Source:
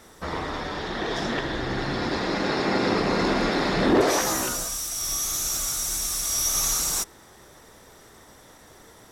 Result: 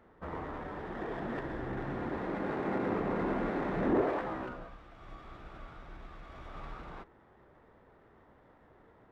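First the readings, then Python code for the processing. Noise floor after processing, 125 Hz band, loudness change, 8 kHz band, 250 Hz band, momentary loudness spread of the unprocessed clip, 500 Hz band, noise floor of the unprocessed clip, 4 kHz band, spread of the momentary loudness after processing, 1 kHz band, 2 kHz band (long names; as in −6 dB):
−62 dBFS, −8.5 dB, −11.0 dB, below −40 dB, −8.5 dB, 9 LU, −9.0 dB, −51 dBFS, −29.0 dB, 19 LU, −10.0 dB, −13.5 dB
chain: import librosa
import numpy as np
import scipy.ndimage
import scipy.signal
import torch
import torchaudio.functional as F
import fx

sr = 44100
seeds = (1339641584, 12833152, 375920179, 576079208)

y = scipy.ndimage.gaussian_filter1d(x, 4.1, mode='constant')
y = fx.running_max(y, sr, window=3)
y = y * librosa.db_to_amplitude(-8.5)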